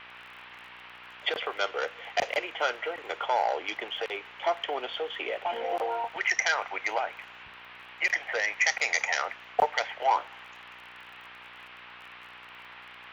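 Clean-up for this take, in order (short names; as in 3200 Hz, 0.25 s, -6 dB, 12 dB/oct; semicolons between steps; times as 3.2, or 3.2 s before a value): de-click; de-hum 60.8 Hz, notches 14; noise print and reduce 27 dB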